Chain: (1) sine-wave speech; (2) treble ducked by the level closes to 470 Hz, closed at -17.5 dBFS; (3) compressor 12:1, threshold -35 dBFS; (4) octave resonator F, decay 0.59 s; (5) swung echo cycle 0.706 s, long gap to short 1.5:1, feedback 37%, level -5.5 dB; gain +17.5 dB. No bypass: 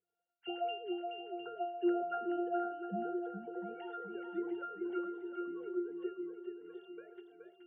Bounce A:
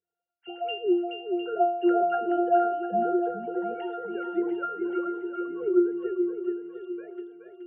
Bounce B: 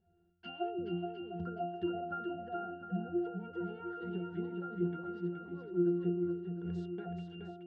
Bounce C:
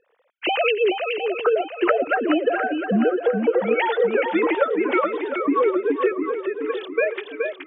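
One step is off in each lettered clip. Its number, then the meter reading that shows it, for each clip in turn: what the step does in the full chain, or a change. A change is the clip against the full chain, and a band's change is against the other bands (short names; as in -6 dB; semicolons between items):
3, mean gain reduction 9.5 dB; 1, 125 Hz band +18.5 dB; 4, 2 kHz band +9.5 dB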